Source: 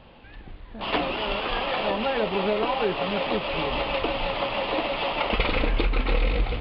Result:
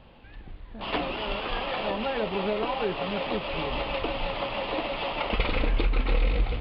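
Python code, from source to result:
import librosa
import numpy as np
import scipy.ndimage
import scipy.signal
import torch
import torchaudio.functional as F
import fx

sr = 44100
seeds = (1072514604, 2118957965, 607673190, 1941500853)

y = fx.low_shelf(x, sr, hz=160.0, db=4.0)
y = y * librosa.db_to_amplitude(-4.0)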